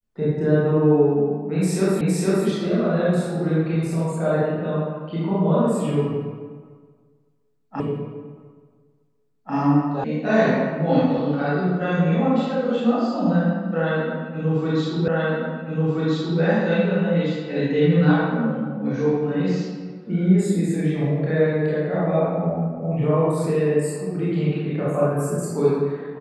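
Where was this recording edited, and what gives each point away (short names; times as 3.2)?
2.01 repeat of the last 0.46 s
7.8 repeat of the last 1.74 s
10.04 sound cut off
15.08 repeat of the last 1.33 s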